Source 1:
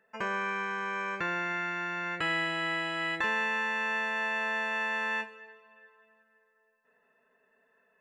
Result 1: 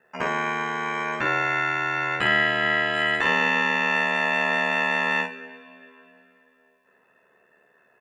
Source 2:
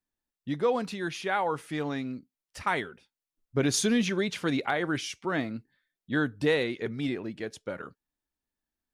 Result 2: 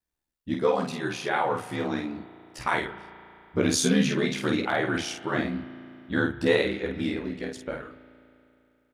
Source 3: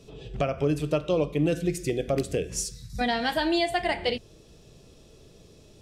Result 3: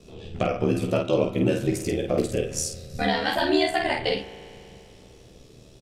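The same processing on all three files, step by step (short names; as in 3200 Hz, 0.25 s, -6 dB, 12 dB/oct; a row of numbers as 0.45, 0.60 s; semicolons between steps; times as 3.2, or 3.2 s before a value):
ring modulator 38 Hz; early reflections 16 ms -5.5 dB, 50 ms -4 dB; spring tank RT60 2.9 s, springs 35 ms, chirp 45 ms, DRR 13 dB; normalise peaks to -9 dBFS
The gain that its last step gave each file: +8.5, +3.0, +3.0 dB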